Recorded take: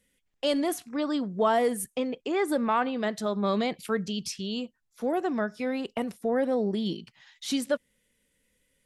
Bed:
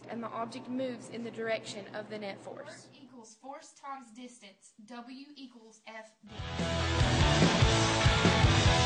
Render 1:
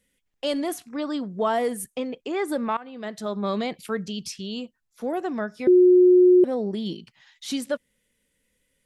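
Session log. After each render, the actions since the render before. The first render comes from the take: 2.77–3.31 fade in, from -20 dB; 5.67–6.44 bleep 362 Hz -11 dBFS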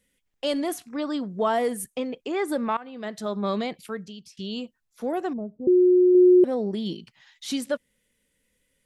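3.52–4.37 fade out, to -20.5 dB; 5.33–6.15 Gaussian blur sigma 15 samples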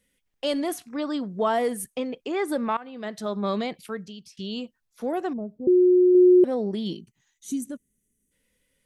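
notch 7300 Hz, Q 22; 6.98–8.32 spectral gain 440–5800 Hz -17 dB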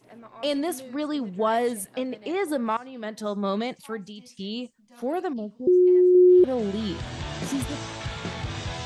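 add bed -7.5 dB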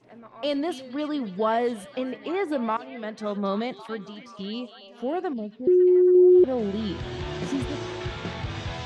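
air absorption 98 m; delay with a stepping band-pass 0.276 s, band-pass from 3700 Hz, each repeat -0.7 oct, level -8 dB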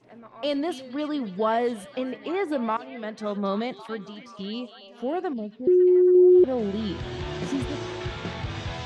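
nothing audible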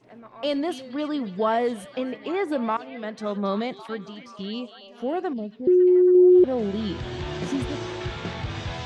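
gain +1 dB

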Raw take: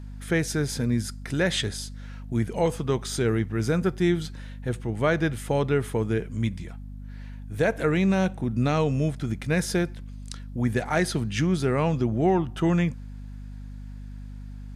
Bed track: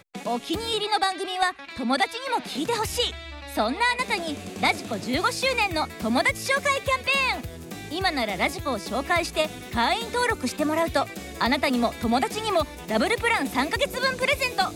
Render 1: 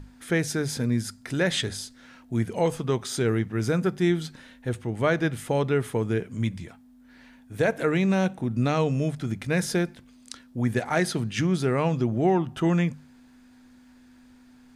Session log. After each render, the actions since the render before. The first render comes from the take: notches 50/100/150/200 Hz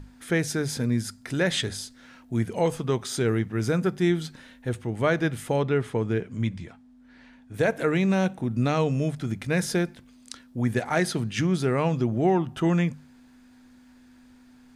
5.56–7.54 air absorption 60 m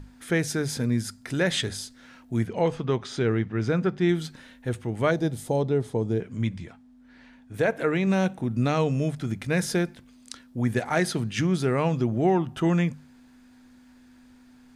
2.47–4.09 LPF 4300 Hz; 5.11–6.2 band shelf 1800 Hz -11.5 dB; 7.6–8.07 tone controls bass -3 dB, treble -6 dB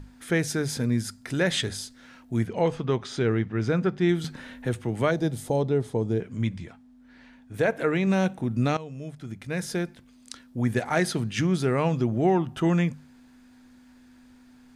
4.24–5.5 three-band squash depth 40%; 8.77–10.46 fade in, from -17.5 dB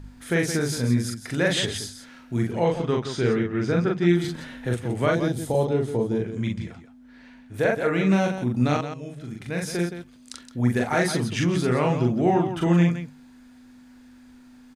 loudspeakers at several distances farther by 14 m -2 dB, 58 m -9 dB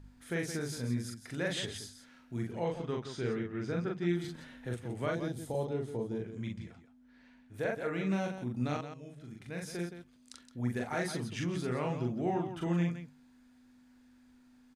gain -12 dB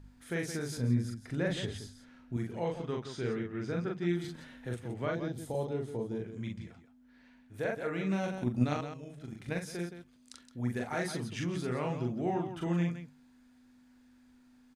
0.77–2.37 tilt -2 dB/oct; 4.94–5.38 bell 10000 Hz -14.5 dB 0.98 oct; 8.23–9.59 transient shaper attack +11 dB, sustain +5 dB

